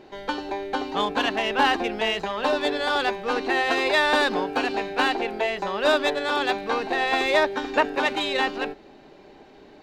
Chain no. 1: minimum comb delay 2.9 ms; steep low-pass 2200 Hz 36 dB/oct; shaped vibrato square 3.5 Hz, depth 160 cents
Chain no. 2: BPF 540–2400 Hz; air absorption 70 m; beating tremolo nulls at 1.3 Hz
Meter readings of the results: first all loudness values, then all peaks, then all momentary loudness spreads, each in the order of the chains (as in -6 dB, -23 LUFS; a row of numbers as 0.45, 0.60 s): -26.0, -30.0 LUFS; -9.0, -11.0 dBFS; 7, 10 LU